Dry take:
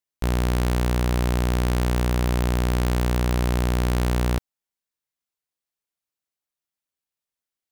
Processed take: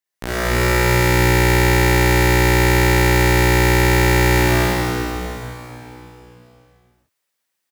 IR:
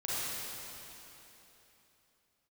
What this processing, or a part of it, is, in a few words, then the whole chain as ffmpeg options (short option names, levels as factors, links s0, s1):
stadium PA: -filter_complex "[0:a]highpass=f=230:p=1,equalizer=f=1800:t=o:w=0.37:g=5.5,aecho=1:1:151.6|230.3|277:0.316|0.447|0.794[s0];[1:a]atrim=start_sample=2205[s1];[s0][s1]afir=irnorm=-1:irlink=0,volume=1.68"